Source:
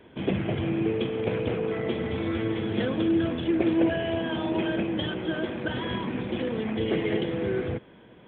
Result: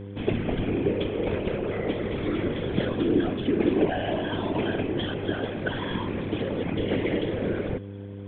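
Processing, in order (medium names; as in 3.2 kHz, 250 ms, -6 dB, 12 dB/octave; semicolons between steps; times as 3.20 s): whisper effect; mains buzz 100 Hz, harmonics 5, -38 dBFS -4 dB/octave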